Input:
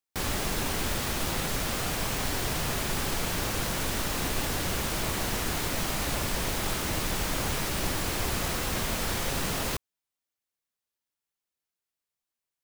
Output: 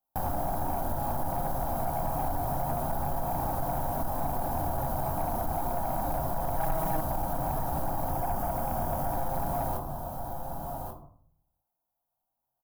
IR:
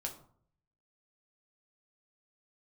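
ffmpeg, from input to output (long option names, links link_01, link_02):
-filter_complex "[0:a]firequalizer=gain_entry='entry(290,0);entry(420,-7);entry(710,11);entry(2100,-27);entry(3100,-21);entry(7800,-16);entry(12000,0)':delay=0.05:min_phase=1,aecho=1:1:1137:0.211[link_01];[1:a]atrim=start_sample=2205[link_02];[link_01][link_02]afir=irnorm=-1:irlink=0,acompressor=threshold=-38dB:ratio=2,asettb=1/sr,asplit=3[link_03][link_04][link_05];[link_03]atrim=end=6.574[link_06];[link_04]atrim=start=6.57:end=7.01,asetpts=PTS-STARTPTS,afade=type=in:duration=0.004:curve=qsin,afade=type=out:start_time=0.436:duration=0.004:curve=qsin,aecho=1:1:6.3:0.99,atrim=end_sample=19404[link_07];[link_05]atrim=start=7.006[link_08];[link_06][link_07]acrossfade=duration=0.004:curve1=hsin:curve2=qsin[link_09];[link_09][link_08]acrossfade=duration=0.004:curve1=qsin:curve2=hsin,asettb=1/sr,asplit=3[link_10][link_11][link_12];[link_10]atrim=end=8.104[link_13];[link_11]atrim=start=8.1:end=9.14,asetpts=PTS-STARTPTS,afade=type=in:duration=0.004:curve=qsin,afade=type=out:start_time=1.036:duration=0.004:curve=qsin,bandreject=frequency=4000:width=7.1[link_14];[link_12]atrim=start=9.136[link_15];[link_13][link_14]acrossfade=duration=0.004:curve1=hsin:curve2=qsin[link_16];[link_16][link_15]acrossfade=duration=0.004:curve1=qsin:curve2=hsin,asoftclip=type=tanh:threshold=-28.5dB,volume=7dB"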